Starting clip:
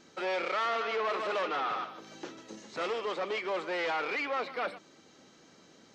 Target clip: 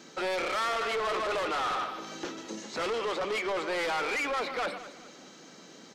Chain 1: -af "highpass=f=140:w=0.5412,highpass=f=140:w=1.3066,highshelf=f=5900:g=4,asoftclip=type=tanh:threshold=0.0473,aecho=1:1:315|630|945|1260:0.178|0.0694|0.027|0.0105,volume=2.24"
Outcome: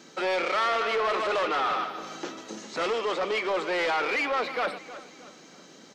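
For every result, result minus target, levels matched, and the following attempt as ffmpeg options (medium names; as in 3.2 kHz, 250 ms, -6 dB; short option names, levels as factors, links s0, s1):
echo 106 ms late; saturation: distortion -9 dB
-af "highpass=f=140:w=0.5412,highpass=f=140:w=1.3066,highshelf=f=5900:g=4,asoftclip=type=tanh:threshold=0.0473,aecho=1:1:209|418|627|836:0.178|0.0694|0.027|0.0105,volume=2.24"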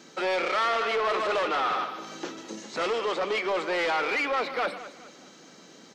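saturation: distortion -9 dB
-af "highpass=f=140:w=0.5412,highpass=f=140:w=1.3066,highshelf=f=5900:g=4,asoftclip=type=tanh:threshold=0.0188,aecho=1:1:209|418|627|836:0.178|0.0694|0.027|0.0105,volume=2.24"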